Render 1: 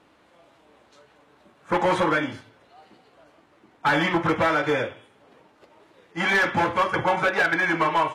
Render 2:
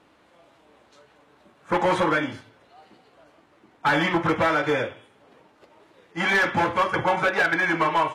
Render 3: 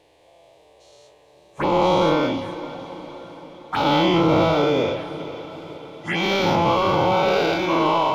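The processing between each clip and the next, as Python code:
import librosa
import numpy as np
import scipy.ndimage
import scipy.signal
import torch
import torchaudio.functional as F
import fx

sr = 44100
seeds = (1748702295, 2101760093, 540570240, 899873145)

y1 = x
y2 = fx.spec_dilate(y1, sr, span_ms=240)
y2 = fx.env_phaser(y2, sr, low_hz=220.0, high_hz=1700.0, full_db=-17.0)
y2 = fx.echo_diffused(y2, sr, ms=467, feedback_pct=58, wet_db=-14)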